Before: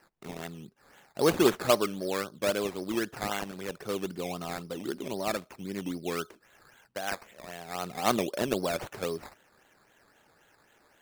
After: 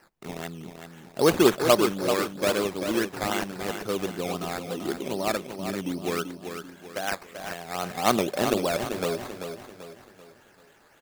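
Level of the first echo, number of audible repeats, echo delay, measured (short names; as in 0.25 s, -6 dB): -8.0 dB, 4, 0.388 s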